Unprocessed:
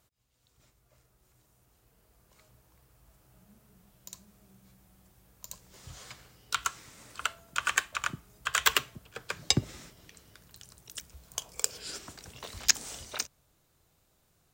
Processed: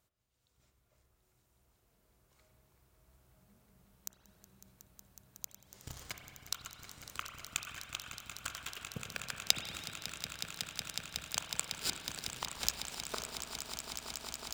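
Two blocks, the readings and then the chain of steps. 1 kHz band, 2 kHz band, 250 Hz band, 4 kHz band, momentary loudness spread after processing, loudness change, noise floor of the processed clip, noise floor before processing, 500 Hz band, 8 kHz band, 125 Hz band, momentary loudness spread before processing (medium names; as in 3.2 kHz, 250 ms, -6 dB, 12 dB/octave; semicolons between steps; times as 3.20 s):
-10.0 dB, -10.5 dB, -8.5 dB, -4.0 dB, 14 LU, -8.0 dB, -76 dBFS, -71 dBFS, -5.5 dB, -6.5 dB, -9.0 dB, 22 LU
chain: dynamic bell 3.2 kHz, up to +5 dB, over -43 dBFS, Q 1.8; waveshaping leveller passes 3; inverted gate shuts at -18 dBFS, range -31 dB; echo with a slow build-up 184 ms, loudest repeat 8, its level -12.5 dB; spring tank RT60 2.3 s, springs 30/46 ms, chirp 45 ms, DRR 5 dB; trim -2 dB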